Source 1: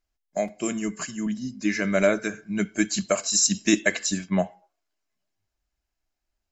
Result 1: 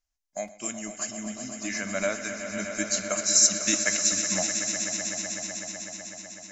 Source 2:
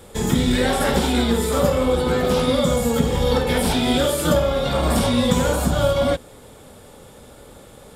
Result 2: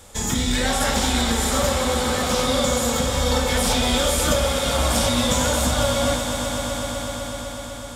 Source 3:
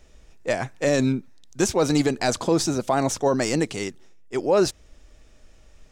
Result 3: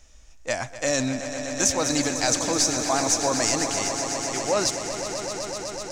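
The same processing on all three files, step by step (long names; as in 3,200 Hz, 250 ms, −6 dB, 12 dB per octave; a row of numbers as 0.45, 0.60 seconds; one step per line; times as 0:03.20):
graphic EQ with 15 bands 160 Hz −10 dB, 400 Hz −11 dB, 6,300 Hz +9 dB
echo that builds up and dies away 125 ms, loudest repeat 5, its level −11.5 dB
normalise the peak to −6 dBFS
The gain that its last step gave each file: −5.0, −0.5, −0.5 decibels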